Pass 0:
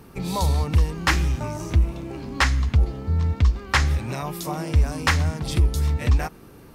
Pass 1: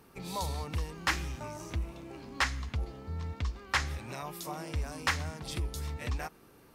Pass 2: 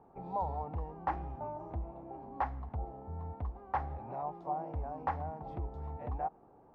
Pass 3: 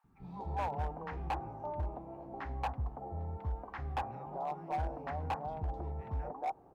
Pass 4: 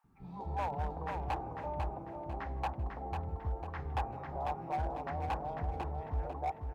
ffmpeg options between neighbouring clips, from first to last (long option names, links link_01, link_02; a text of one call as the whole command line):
ffmpeg -i in.wav -af "lowshelf=frequency=300:gain=-8.5,volume=-8dB" out.wav
ffmpeg -i in.wav -af "lowpass=frequency=790:width_type=q:width=4.9,volume=-5dB" out.wav
ffmpeg -i in.wav -filter_complex "[0:a]acrossover=split=260|1400[link_01][link_02][link_03];[link_01]adelay=40[link_04];[link_02]adelay=230[link_05];[link_04][link_05][link_03]amix=inputs=3:normalize=0,volume=32dB,asoftclip=hard,volume=-32dB,volume=2dB" out.wav
ffmpeg -i in.wav -af "aecho=1:1:497|994|1491|1988:0.562|0.18|0.0576|0.0184" out.wav